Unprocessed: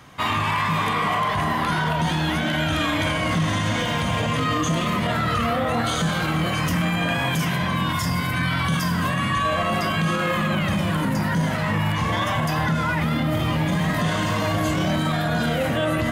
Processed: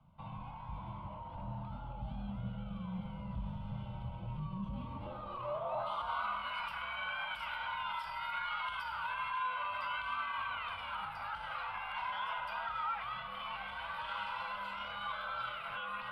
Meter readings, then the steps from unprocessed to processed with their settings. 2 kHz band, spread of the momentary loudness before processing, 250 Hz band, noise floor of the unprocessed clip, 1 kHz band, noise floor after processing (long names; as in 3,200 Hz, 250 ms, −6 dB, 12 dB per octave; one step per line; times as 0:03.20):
−16.0 dB, 1 LU, −24.5 dB, −24 dBFS, −13.5 dB, −46 dBFS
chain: low-shelf EQ 170 Hz −11 dB
brickwall limiter −18 dBFS, peak gain reduction 5.5 dB
band-pass filter sweep 260 Hz → 1,700 Hz, 0:04.59–0:06.51
phaser with its sweep stopped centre 1,900 Hz, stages 6
frequency shifter −110 Hz
level −1.5 dB